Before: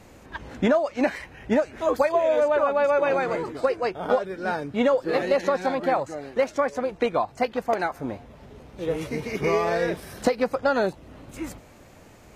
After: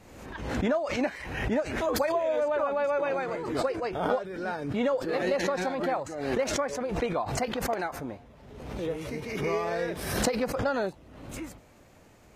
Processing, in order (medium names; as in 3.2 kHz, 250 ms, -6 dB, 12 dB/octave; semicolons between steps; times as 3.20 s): swell ahead of each attack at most 48 dB/s; trim -6.5 dB